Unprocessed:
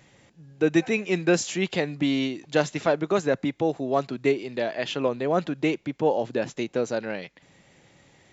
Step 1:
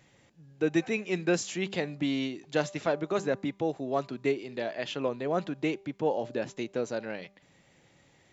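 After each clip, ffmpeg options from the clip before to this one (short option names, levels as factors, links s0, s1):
-af "bandreject=f=197:t=h:w=4,bandreject=f=394:t=h:w=4,bandreject=f=591:t=h:w=4,bandreject=f=788:t=h:w=4,bandreject=f=985:t=h:w=4,bandreject=f=1182:t=h:w=4,volume=0.531"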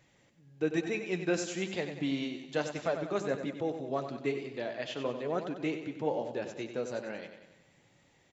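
-af "flanger=delay=1.7:depth=8.4:regen=-55:speed=1.1:shape=triangular,aecho=1:1:94|188|282|376|470|564:0.355|0.192|0.103|0.0559|0.0302|0.0163"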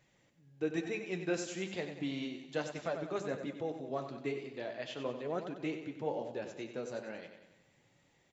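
-af "flanger=delay=4.7:depth=9.4:regen=-72:speed=0.36:shape=triangular"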